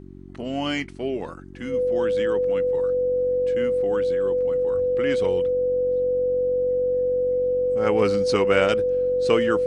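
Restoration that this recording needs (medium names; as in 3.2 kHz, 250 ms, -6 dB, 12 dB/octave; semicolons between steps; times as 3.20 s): de-hum 46.5 Hz, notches 8; band-stop 500 Hz, Q 30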